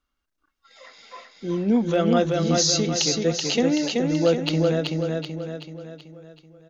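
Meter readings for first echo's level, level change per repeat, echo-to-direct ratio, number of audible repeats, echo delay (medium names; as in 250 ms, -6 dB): -3.0 dB, -6.0 dB, -2.0 dB, 6, 380 ms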